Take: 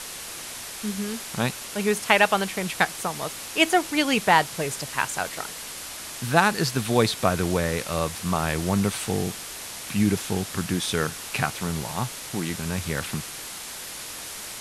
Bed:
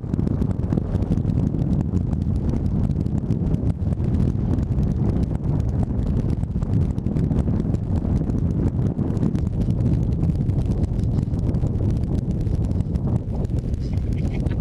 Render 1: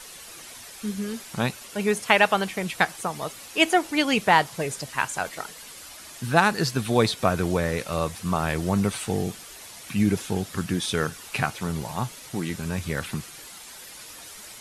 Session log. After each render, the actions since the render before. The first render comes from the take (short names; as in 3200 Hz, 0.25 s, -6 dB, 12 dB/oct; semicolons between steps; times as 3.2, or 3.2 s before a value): denoiser 9 dB, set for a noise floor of -37 dBFS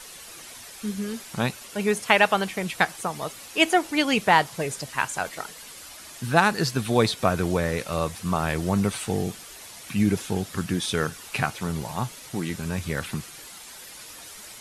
nothing audible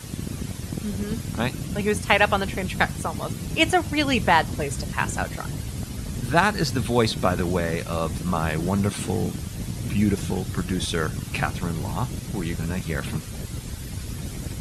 add bed -10 dB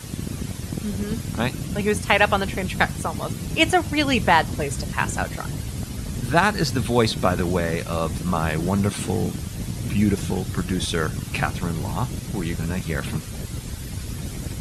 gain +1.5 dB; limiter -2 dBFS, peak gain reduction 2 dB